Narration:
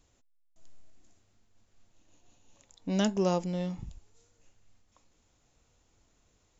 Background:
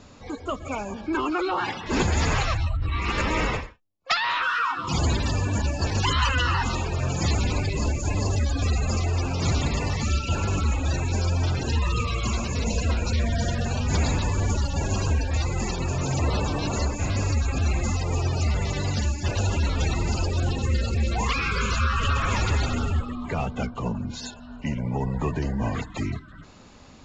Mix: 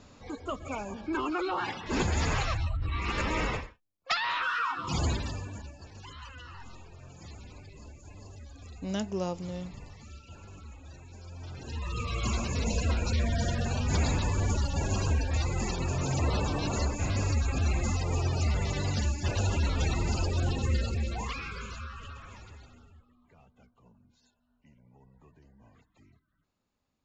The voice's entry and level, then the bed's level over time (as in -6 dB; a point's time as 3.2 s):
5.95 s, -5.0 dB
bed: 5.08 s -5.5 dB
5.85 s -23.5 dB
11.19 s -23.5 dB
12.24 s -4 dB
20.76 s -4 dB
23.01 s -32.5 dB